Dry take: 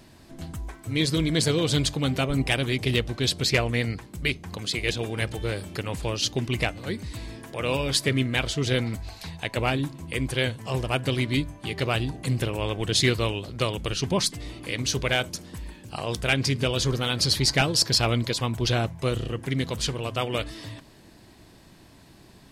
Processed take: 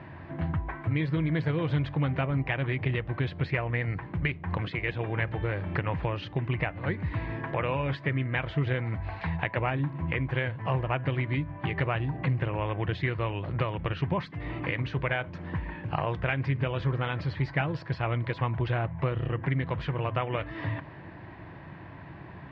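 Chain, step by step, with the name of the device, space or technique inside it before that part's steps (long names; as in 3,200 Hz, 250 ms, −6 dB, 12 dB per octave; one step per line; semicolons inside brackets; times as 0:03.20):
bass amplifier (downward compressor 5 to 1, threshold −34 dBFS, peak gain reduction 15.5 dB; loudspeaker in its box 75–2,300 Hz, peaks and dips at 89 Hz +5 dB, 150 Hz +5 dB, 230 Hz −9 dB, 420 Hz −5 dB, 970 Hz +4 dB, 1,800 Hz +4 dB)
level +8 dB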